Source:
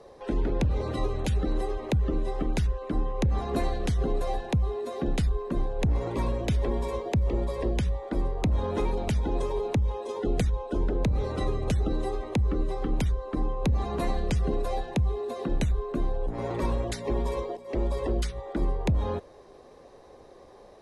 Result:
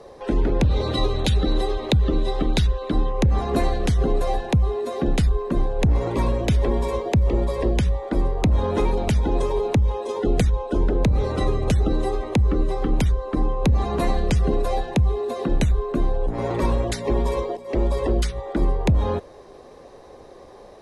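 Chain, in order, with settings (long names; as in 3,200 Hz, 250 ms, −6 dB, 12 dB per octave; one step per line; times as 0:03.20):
0:00.63–0:03.10: parametric band 3,800 Hz +11.5 dB 0.47 octaves
level +6.5 dB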